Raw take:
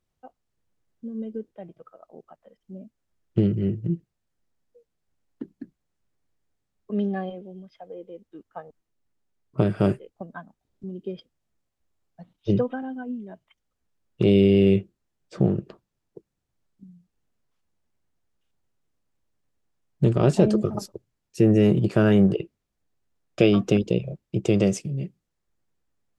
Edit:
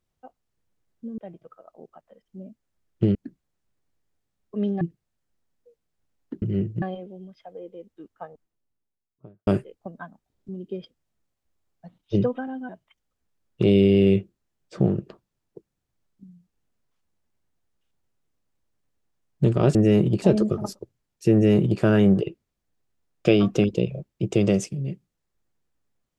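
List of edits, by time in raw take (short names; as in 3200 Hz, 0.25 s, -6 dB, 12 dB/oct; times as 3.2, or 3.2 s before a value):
1.18–1.53 cut
3.5–3.9 swap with 5.51–7.17
8.44–9.82 studio fade out
13.04–13.29 cut
21.46–21.93 copy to 20.35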